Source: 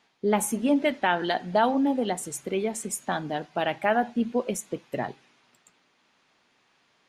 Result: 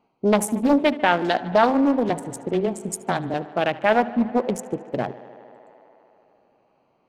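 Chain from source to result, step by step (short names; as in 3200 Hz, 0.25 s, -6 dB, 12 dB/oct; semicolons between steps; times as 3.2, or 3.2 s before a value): Wiener smoothing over 25 samples; 2.09–3.34 frequency shift -14 Hz; on a send: tape echo 75 ms, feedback 90%, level -18 dB, low-pass 5600 Hz; on the sum: Doppler distortion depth 0.4 ms; gain +5.5 dB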